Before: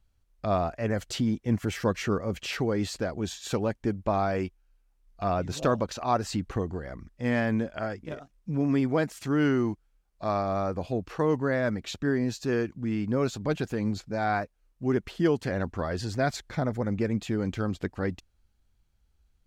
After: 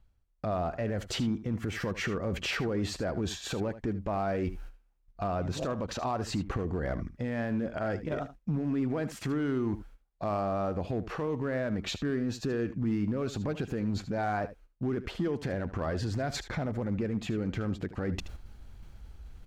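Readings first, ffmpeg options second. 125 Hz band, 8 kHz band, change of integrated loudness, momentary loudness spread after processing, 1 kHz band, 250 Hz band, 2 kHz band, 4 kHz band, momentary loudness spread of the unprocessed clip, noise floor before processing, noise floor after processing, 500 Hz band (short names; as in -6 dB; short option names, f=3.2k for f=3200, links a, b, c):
-2.5 dB, -2.5 dB, -4.0 dB, 5 LU, -4.5 dB, -3.5 dB, -4.0 dB, -0.5 dB, 7 LU, -69 dBFS, -66 dBFS, -4.5 dB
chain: -filter_complex "[0:a]agate=range=-16dB:threshold=-57dB:ratio=16:detection=peak,highshelf=f=3.2k:g=-10,areverse,acompressor=mode=upward:threshold=-28dB:ratio=2.5,areverse,alimiter=level_in=4.5dB:limit=-24dB:level=0:latency=1:release=127,volume=-4.5dB,asoftclip=type=hard:threshold=-30dB,asplit=2[a][b];[b]aecho=0:1:76:0.2[c];[a][c]amix=inputs=2:normalize=0,volume=6dB"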